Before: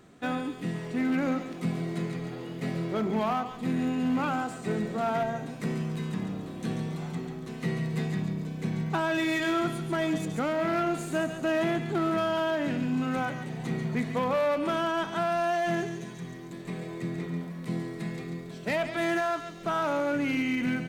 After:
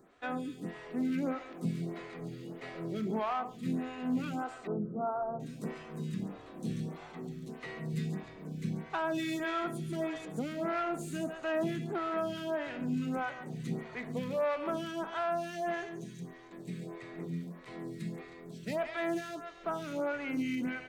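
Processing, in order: 4.67–5.40 s: elliptic low-pass 1.3 kHz, stop band 40 dB; lamp-driven phase shifter 1.6 Hz; trim -3.5 dB

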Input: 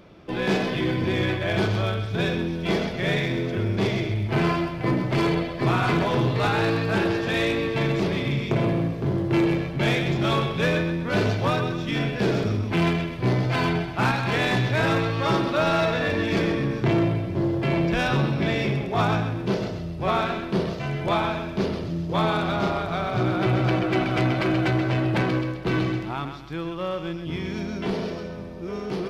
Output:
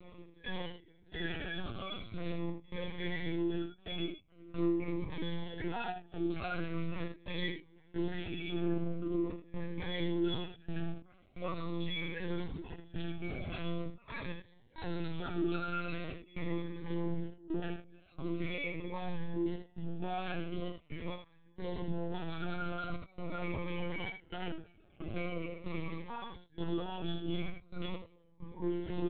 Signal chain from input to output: reverb removal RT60 1.5 s; in parallel at +1.5 dB: compressor with a negative ratio -29 dBFS; on the sum: peak limiter -18.5 dBFS, peak gain reduction 8.5 dB; inharmonic resonator 170 Hz, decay 0.28 s, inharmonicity 0.008; trance gate "x.x..xxxxxx.xxx" 66 bpm -24 dB; overload inside the chain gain 32.5 dB; doubling 26 ms -5 dB; delay 73 ms -7.5 dB; LPC vocoder at 8 kHz pitch kept; Shepard-style phaser falling 0.43 Hz; trim +1 dB

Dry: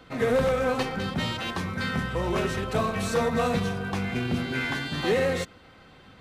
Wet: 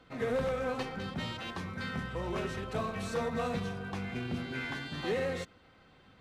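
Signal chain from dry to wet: treble shelf 10 kHz -8 dB; trim -8.5 dB

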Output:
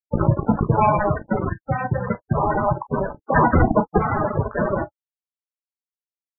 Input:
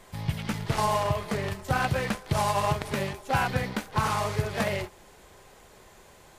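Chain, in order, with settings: high-pass 46 Hz 24 dB/octave; compression 2:1, threshold -31 dBFS, peak gain reduction 6.5 dB; bit crusher 5-bit; level rider gain up to 15.5 dB; 3.36–3.98 s: static phaser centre 530 Hz, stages 6; sine folder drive 18 dB, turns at -3 dBFS; 1.49–2.07 s: low-pass 2.1 kHz 24 dB/octave; sample-and-hold 13×; loudest bins only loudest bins 16; reverberation, pre-delay 3 ms, DRR 11 dB; loudness maximiser +9.5 dB; trim -6 dB

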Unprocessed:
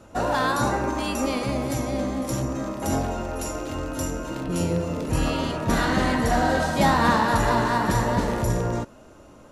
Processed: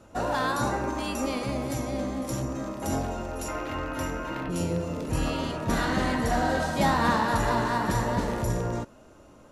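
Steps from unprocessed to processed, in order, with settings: 3.48–4.50 s: ten-band graphic EQ 1 kHz +5 dB, 2 kHz +9 dB, 8 kHz -8 dB; trim -4 dB

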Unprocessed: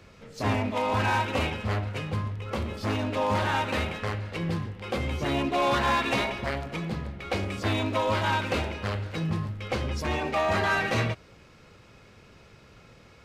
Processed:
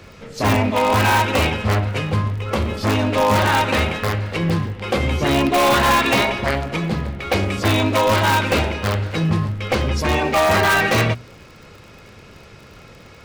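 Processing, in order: hum notches 60/120/180/240 Hz; in parallel at -5.5 dB: integer overflow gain 19 dB; on the sum: crackle 56 per s -43 dBFS; trim +6.5 dB

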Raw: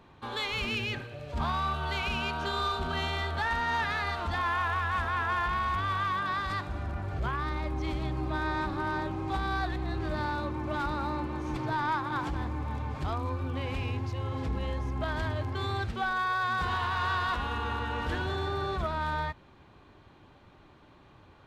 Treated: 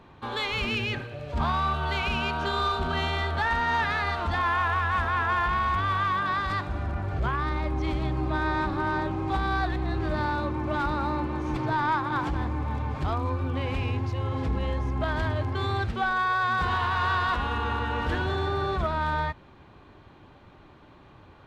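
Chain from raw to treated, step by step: treble shelf 4.9 kHz -6.5 dB; trim +4.5 dB

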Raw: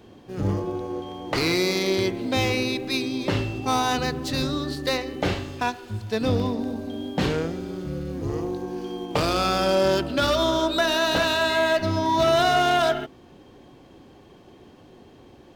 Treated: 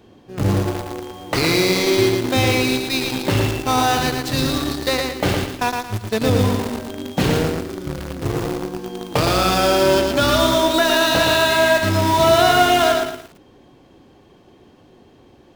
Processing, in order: dynamic bell 120 Hz, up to +5 dB, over -44 dBFS, Q 3.8; in parallel at -4 dB: bit crusher 4-bit; on the sum: bit-crushed delay 113 ms, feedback 35%, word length 7-bit, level -4 dB

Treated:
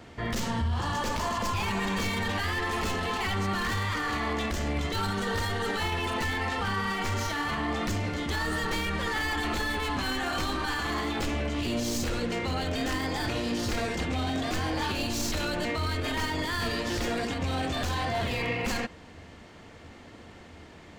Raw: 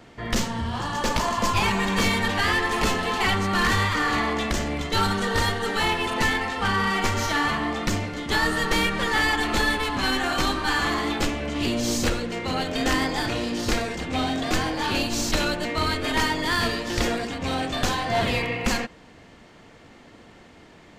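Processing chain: tracing distortion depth 0.029 ms; peaking EQ 82 Hz +12.5 dB 0.26 oct; peak limiter -21.5 dBFS, peak gain reduction 11 dB

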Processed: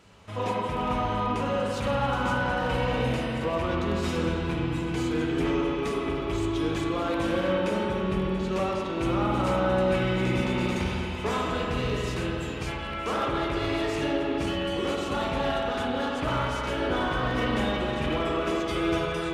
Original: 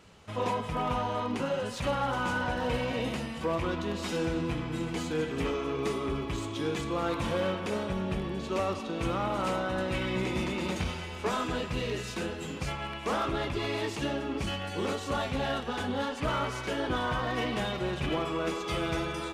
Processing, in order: spring tank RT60 3 s, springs 39/48 ms, chirp 35 ms, DRR -1 dB

